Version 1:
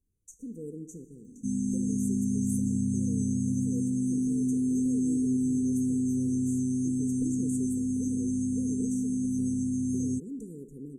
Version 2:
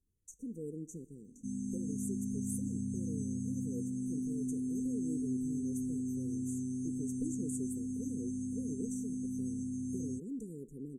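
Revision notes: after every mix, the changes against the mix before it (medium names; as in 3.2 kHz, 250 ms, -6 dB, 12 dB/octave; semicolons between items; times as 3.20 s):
speech: send -10.0 dB; background -9.0 dB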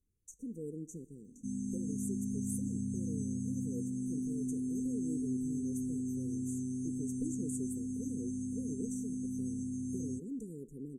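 background: send on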